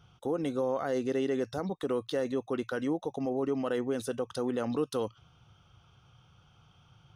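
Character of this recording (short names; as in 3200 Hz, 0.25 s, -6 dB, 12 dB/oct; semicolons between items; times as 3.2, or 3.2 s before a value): noise floor -63 dBFS; spectral tilt -5.5 dB/oct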